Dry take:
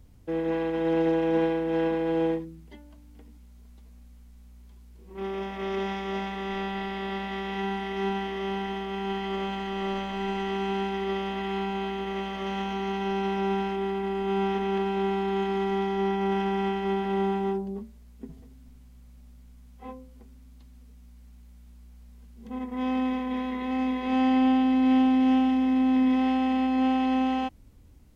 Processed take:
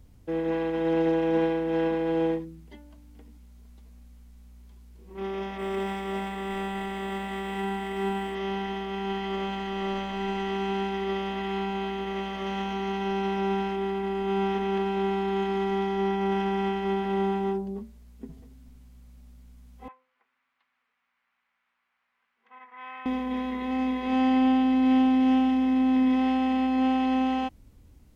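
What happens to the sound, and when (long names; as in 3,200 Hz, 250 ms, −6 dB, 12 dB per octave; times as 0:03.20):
0:05.58–0:08.35: linearly interpolated sample-rate reduction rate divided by 4×
0:19.88–0:23.06: flat-topped band-pass 1,600 Hz, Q 1.1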